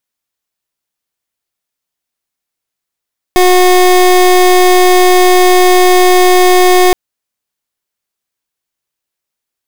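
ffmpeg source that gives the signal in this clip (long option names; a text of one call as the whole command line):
ffmpeg -f lavfi -i "aevalsrc='0.501*(2*lt(mod(364*t,1),0.26)-1)':duration=3.57:sample_rate=44100" out.wav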